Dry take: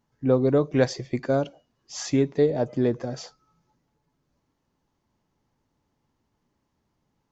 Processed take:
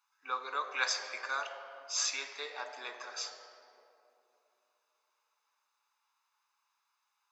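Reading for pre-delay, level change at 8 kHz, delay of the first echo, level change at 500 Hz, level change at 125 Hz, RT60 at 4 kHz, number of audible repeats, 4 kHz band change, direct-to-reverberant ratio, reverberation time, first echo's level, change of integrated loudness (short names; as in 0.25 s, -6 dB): 3 ms, n/a, none, -24.0 dB, under -40 dB, 1.3 s, none, +2.5 dB, 6.5 dB, 2.9 s, none, -11.5 dB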